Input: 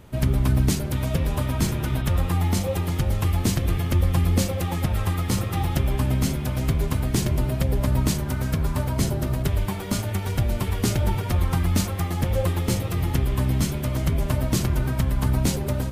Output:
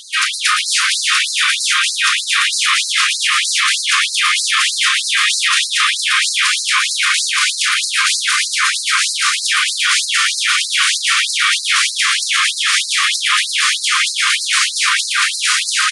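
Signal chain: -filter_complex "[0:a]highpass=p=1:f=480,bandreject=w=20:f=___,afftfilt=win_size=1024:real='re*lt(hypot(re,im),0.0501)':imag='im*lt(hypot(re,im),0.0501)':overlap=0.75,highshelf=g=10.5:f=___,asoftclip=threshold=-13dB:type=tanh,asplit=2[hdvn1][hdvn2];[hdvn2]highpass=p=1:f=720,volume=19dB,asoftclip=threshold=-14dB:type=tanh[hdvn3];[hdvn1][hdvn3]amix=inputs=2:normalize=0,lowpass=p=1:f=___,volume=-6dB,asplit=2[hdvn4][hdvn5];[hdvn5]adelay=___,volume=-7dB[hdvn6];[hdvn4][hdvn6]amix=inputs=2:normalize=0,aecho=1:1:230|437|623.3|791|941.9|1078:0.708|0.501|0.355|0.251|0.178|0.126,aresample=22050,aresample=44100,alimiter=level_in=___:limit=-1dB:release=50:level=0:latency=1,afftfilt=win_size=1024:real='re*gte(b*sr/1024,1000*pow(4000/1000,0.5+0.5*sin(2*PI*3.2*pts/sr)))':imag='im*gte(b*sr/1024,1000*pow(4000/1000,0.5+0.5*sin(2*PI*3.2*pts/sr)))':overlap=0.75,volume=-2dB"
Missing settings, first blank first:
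7.7k, 2.5k, 1.3k, 36, 22dB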